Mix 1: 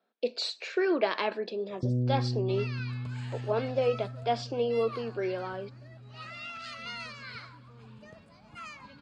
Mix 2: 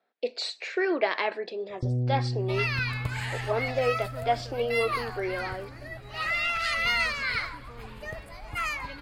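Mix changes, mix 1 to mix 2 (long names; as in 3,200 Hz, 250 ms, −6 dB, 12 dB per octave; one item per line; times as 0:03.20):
first sound: remove Butterworth low-pass 690 Hz 96 dB per octave
second sound +11.0 dB
master: remove loudspeaker in its box 110–7,700 Hz, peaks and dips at 210 Hz +9 dB, 760 Hz −4 dB, 2,000 Hz −9 dB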